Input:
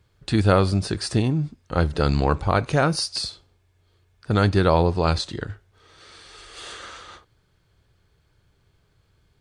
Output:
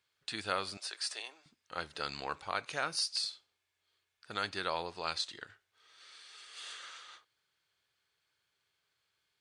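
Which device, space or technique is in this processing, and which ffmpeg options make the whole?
filter by subtraction: -filter_complex "[0:a]asplit=2[s0][s1];[s1]lowpass=2600,volume=-1[s2];[s0][s2]amix=inputs=2:normalize=0,asettb=1/sr,asplit=3[s3][s4][s5];[s3]atrim=end=0.774[s6];[s4]atrim=start=0.77:end=1.46,asetpts=PTS-STARTPTS,afade=t=in:d=0.004:c=qsin,afade=t=out:st=0.686:d=0.004:c=qsin,highpass=f=490:w=0.5412,highpass=f=490:w=1.3066[s7];[s5]atrim=start=1.456[s8];[s6][s7]acrossfade=d=0.004:c1=hsin:c2=qsin[s9];[s9][s8]acrossfade=d=0.004:c1=qsin:c2=hsin,volume=0.376"

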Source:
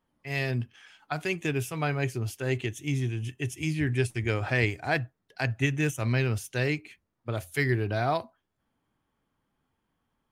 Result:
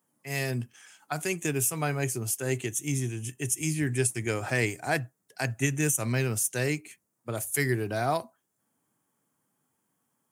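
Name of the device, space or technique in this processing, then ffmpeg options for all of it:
budget condenser microphone: -af "highpass=f=120:w=0.5412,highpass=f=120:w=1.3066,highshelf=f=5500:t=q:w=1.5:g=13"

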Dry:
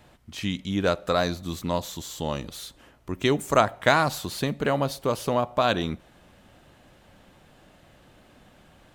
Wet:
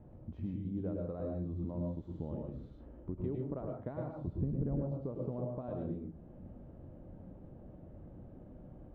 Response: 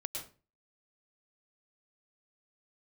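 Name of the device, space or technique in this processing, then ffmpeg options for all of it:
television next door: -filter_complex "[0:a]asettb=1/sr,asplit=3[s0][s1][s2];[s0]atrim=end=4.274[s3];[s1]atrim=start=4.27:end=4.81,asetpts=PTS-STARTPTS,afade=t=in:d=0.004:c=qsin,afade=t=out:st=0.536:d=0.004:c=qsin,aemphasis=mode=reproduction:type=riaa[s4];[s2]atrim=start=4.806[s5];[s3][s4]acrossfade=d=0.004:c1=hsin:c2=qsin[s6];[s6][s5]acrossfade=d=0.004:c1=qsin:c2=hsin,acompressor=threshold=0.00794:ratio=3,lowpass=410[s7];[1:a]atrim=start_sample=2205[s8];[s7][s8]afir=irnorm=-1:irlink=0,volume=1.78"

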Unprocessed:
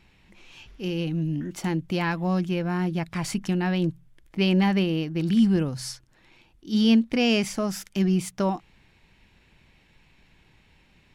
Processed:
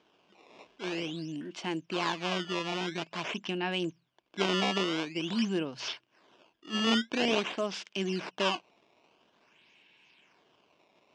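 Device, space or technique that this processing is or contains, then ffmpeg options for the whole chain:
circuit-bent sampling toy: -af "acrusher=samples=16:mix=1:aa=0.000001:lfo=1:lforange=25.6:lforate=0.48,highpass=470,equalizer=f=520:t=q:w=4:g=-6,equalizer=f=810:t=q:w=4:g=-7,equalizer=f=1300:t=q:w=4:g=-7,equalizer=f=1900:t=q:w=4:g=-8,equalizer=f=2900:t=q:w=4:g=5,equalizer=f=4200:t=q:w=4:g=-6,lowpass=f=5100:w=0.5412,lowpass=f=5100:w=1.3066,volume=1.33"

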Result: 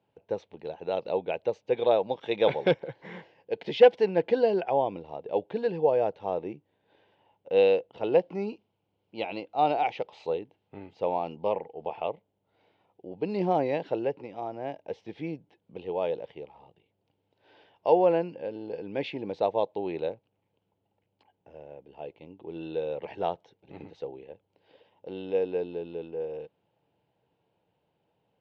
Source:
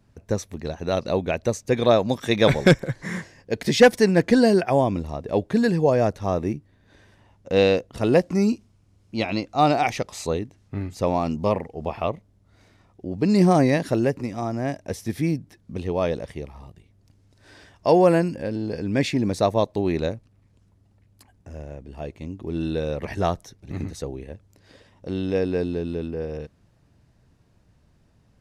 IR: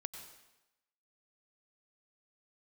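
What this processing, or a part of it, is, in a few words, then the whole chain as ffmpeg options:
kitchen radio: -af "highpass=220,equalizer=f=240:t=q:w=4:g=-9,equalizer=f=480:t=q:w=4:g=7,equalizer=f=850:t=q:w=4:g=9,equalizer=f=1200:t=q:w=4:g=-7,equalizer=f=1800:t=q:w=4:g=-7,equalizer=f=3000:t=q:w=4:g=6,lowpass=f=3500:w=0.5412,lowpass=f=3500:w=1.3066,volume=0.376"

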